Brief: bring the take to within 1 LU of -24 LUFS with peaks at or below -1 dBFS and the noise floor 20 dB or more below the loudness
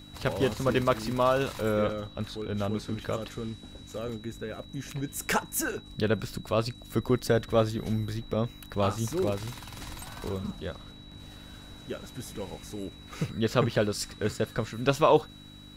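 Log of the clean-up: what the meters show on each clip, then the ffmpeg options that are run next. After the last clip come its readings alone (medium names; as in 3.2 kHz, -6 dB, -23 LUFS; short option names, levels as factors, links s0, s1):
hum 50 Hz; highest harmonic 300 Hz; hum level -49 dBFS; steady tone 3.9 kHz; tone level -51 dBFS; loudness -30.0 LUFS; peak level -8.0 dBFS; loudness target -24.0 LUFS
-> -af "bandreject=f=50:t=h:w=4,bandreject=f=100:t=h:w=4,bandreject=f=150:t=h:w=4,bandreject=f=200:t=h:w=4,bandreject=f=250:t=h:w=4,bandreject=f=300:t=h:w=4"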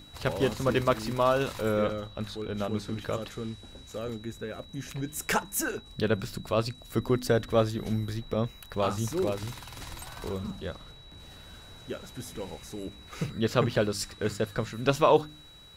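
hum not found; steady tone 3.9 kHz; tone level -51 dBFS
-> -af "bandreject=f=3900:w=30"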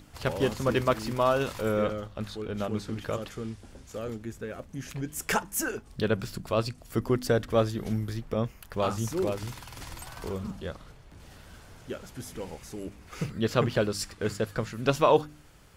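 steady tone not found; loudness -30.0 LUFS; peak level -8.5 dBFS; loudness target -24.0 LUFS
-> -af "volume=2"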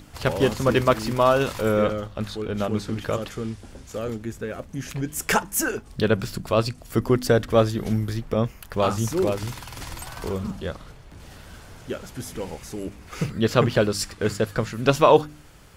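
loudness -24.0 LUFS; peak level -2.5 dBFS; noise floor -46 dBFS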